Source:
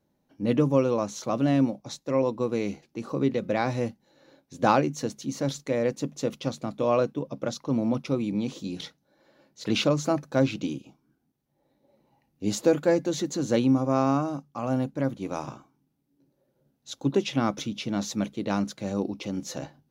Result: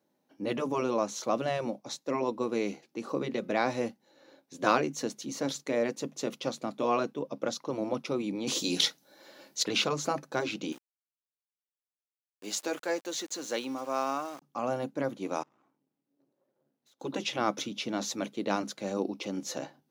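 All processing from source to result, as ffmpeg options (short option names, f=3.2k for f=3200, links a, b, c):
-filter_complex "[0:a]asettb=1/sr,asplit=3[a][b][c];[a]atrim=end=8.474[d];[b]atrim=start=8.47:end=9.63,asetpts=PTS-STARTPTS,afade=t=in:d=0.004:c=qsin,afade=t=out:st=1.156:d=0.004:c=qsin,highshelf=f=2.7k:g=11.5,acontrast=60[e];[c]atrim=start=9.626[f];[d][e]acrossfade=d=0.004:c1=hsin:c2=qsin[g];[g][f]acrossfade=d=0.004:c1=qsin:c2=hsin,asettb=1/sr,asplit=3[h][i][j];[h]atrim=end=10.724[k];[i]atrim=start=10.72:end=14.42,asetpts=PTS-STARTPTS,afade=t=in:d=0.004:c=qsin,afade=t=out:st=3.696:d=0.004:c=qsin,highpass=f=1.1k:p=1,aeval=exprs='val(0)*gte(abs(val(0)),0.00473)':c=same[l];[j]atrim=start=14.416[m];[k][l]acrossfade=d=0.004:c1=hsin:c2=qsin[n];[n][m]acrossfade=d=0.004:c1=qsin:c2=hsin,asettb=1/sr,asplit=3[o][p][q];[o]atrim=end=15.434[r];[p]atrim=start=15.43:end=17,asetpts=PTS-STARTPTS,afade=t=in:d=0.004:c=qsin,afade=t=out:st=1.566:d=0.004:c=qsin,highshelf=f=3.7k:g=-9.5,acompressor=threshold=-56dB:ratio=8:attack=3.2:release=140:knee=1:detection=peak,aeval=exprs='(tanh(1260*val(0)+0.8)-tanh(0.8))/1260':c=same[s];[q]atrim=start=16.996[t];[r][s]acrossfade=d=0.004:c1=hsin:c2=qsin[u];[u][t]acrossfade=d=0.004:c1=qsin:c2=hsin,afftfilt=real='re*lt(hypot(re,im),0.501)':imag='im*lt(hypot(re,im),0.501)':win_size=1024:overlap=0.75,highpass=260"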